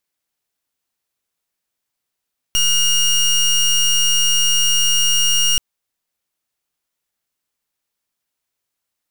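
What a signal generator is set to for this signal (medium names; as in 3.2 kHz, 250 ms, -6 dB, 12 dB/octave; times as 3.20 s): pulse 2.85 kHz, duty 21% -15 dBFS 3.03 s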